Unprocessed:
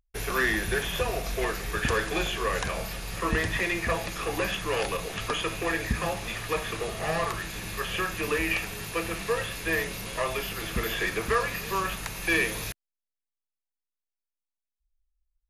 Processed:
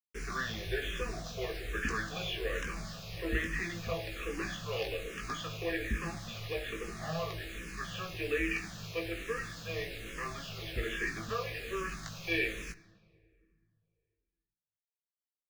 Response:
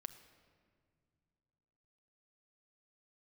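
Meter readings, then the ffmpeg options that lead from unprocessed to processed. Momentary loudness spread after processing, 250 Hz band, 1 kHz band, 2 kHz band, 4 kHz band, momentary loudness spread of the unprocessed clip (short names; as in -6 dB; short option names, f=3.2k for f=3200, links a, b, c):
7 LU, -6.5 dB, -11.0 dB, -8.0 dB, -7.5 dB, 6 LU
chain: -filter_complex "[0:a]lowpass=f=6.8k:w=0.5412,lowpass=f=6.8k:w=1.3066,equalizer=f=910:t=o:w=0.35:g=-13,acrusher=bits=6:mix=0:aa=0.5,asplit=2[a][b];[1:a]atrim=start_sample=2205,adelay=18[c];[b][c]afir=irnorm=-1:irlink=0,volume=-0.5dB[d];[a][d]amix=inputs=2:normalize=0,asplit=2[e][f];[f]afreqshift=-1.2[g];[e][g]amix=inputs=2:normalize=1,volume=-5.5dB"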